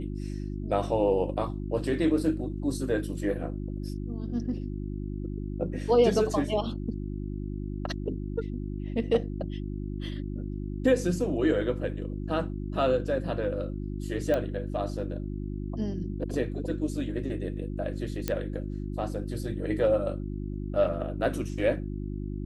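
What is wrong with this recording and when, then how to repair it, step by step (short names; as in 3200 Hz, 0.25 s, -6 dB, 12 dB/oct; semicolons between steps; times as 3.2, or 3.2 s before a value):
hum 50 Hz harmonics 7 -34 dBFS
14.34 pop -17 dBFS
18.28 pop -12 dBFS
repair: de-click; de-hum 50 Hz, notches 7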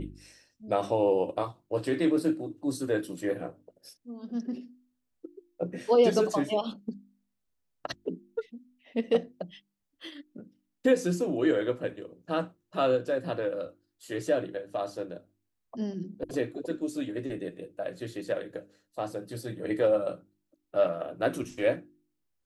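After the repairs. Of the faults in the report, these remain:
none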